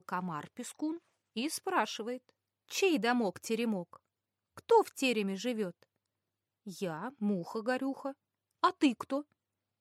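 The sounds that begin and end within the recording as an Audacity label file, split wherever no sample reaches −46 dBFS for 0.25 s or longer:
1.360000	2.290000	sound
2.690000	3.960000	sound
4.580000	5.830000	sound
6.670000	8.120000	sound
8.630000	9.220000	sound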